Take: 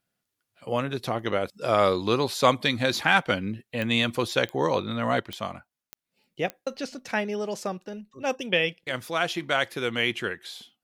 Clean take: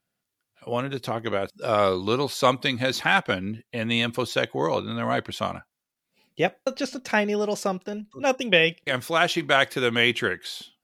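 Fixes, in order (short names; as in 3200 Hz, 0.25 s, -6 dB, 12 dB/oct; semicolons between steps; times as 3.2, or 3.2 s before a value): de-click; gain correction +5 dB, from 5.2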